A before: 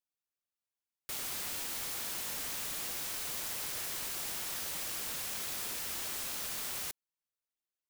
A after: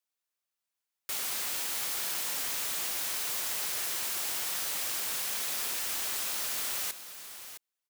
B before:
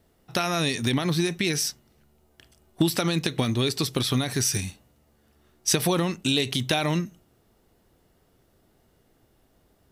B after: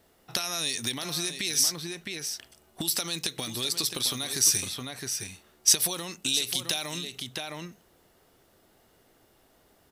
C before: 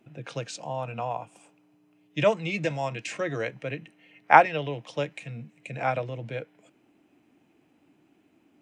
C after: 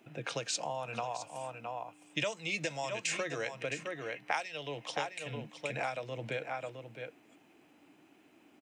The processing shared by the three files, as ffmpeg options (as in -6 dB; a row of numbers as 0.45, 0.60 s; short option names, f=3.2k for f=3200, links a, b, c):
-filter_complex "[0:a]lowshelf=f=290:g=-11,aecho=1:1:663:0.266,acrossover=split=4200[a][b];[a]acompressor=threshold=-38dB:ratio=12[c];[c][b]amix=inputs=2:normalize=0,volume=5dB"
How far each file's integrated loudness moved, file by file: +5.0, -2.5, -10.0 LU